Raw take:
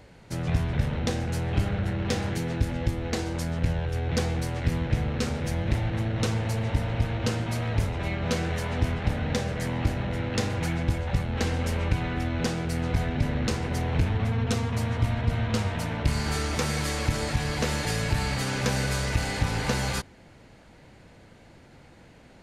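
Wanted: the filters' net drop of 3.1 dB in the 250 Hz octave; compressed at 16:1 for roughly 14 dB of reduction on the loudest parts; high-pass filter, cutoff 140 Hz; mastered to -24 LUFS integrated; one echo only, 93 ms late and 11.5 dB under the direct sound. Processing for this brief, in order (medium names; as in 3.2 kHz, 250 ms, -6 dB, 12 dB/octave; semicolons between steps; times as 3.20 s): high-pass 140 Hz; peaking EQ 250 Hz -3 dB; compression 16:1, threshold -39 dBFS; delay 93 ms -11.5 dB; trim +19 dB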